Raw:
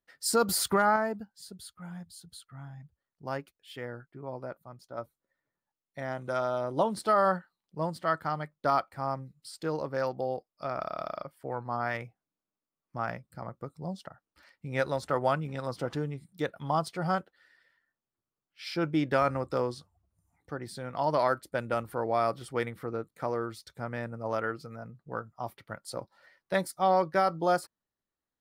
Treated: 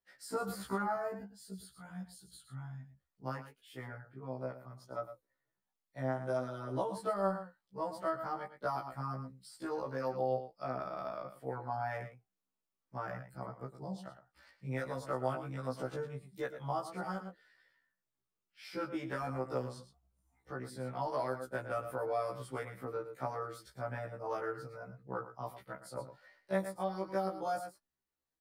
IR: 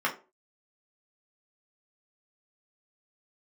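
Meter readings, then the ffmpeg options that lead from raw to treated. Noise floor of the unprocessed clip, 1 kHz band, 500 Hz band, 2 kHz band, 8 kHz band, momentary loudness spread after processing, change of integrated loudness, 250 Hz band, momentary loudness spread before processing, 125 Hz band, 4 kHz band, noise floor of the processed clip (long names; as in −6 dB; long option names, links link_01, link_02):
below −85 dBFS, −8.5 dB, −7.0 dB, −9.0 dB, −15.0 dB, 13 LU, −8.5 dB, −7.0 dB, 19 LU, −5.0 dB, −13.5 dB, below −85 dBFS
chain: -filter_complex "[0:a]aecho=1:1:110:0.237,acrossover=split=110|580|2100|6100[link_01][link_02][link_03][link_04][link_05];[link_01]acompressor=threshold=-57dB:ratio=4[link_06];[link_02]acompressor=threshold=-35dB:ratio=4[link_07];[link_03]acompressor=threshold=-34dB:ratio=4[link_08];[link_04]acompressor=threshold=-60dB:ratio=4[link_09];[link_05]acompressor=threshold=-51dB:ratio=4[link_10];[link_06][link_07][link_08][link_09][link_10]amix=inputs=5:normalize=0,flanger=delay=3.8:depth=4:regen=72:speed=1.4:shape=triangular,afftfilt=real='re*1.73*eq(mod(b,3),0)':imag='im*1.73*eq(mod(b,3),0)':win_size=2048:overlap=0.75,volume=3.5dB"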